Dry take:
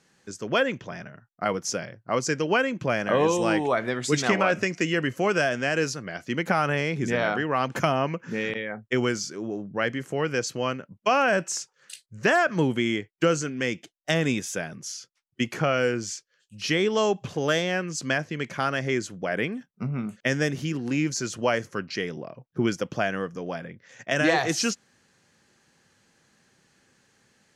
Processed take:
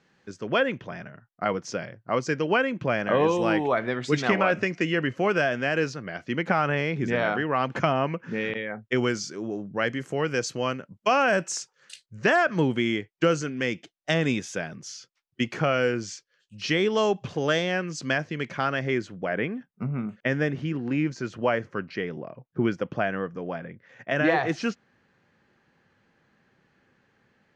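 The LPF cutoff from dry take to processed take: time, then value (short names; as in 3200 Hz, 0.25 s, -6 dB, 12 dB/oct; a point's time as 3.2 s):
8.51 s 3700 Hz
9.54 s 8400 Hz
11.59 s 8400 Hz
12.24 s 5300 Hz
18.34 s 5300 Hz
19.45 s 2400 Hz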